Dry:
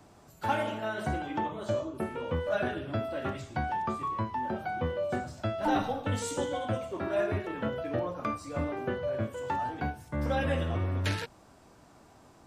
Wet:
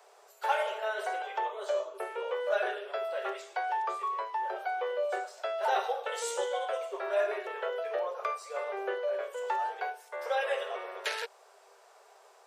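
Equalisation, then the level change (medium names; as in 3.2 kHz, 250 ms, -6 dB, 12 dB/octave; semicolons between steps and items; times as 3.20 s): Chebyshev high-pass 390 Hz, order 8; +1.5 dB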